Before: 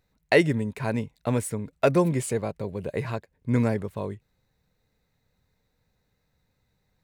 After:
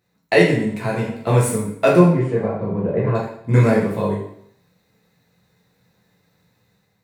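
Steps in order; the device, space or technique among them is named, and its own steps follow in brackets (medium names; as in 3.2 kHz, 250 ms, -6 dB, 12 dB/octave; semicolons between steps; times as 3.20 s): 1.98–3.14 s: low-pass 2 kHz -> 1.1 kHz 12 dB/octave; far laptop microphone (reverberation RT60 0.70 s, pre-delay 5 ms, DRR -5 dB; high-pass 120 Hz 12 dB/octave; level rider gain up to 6 dB)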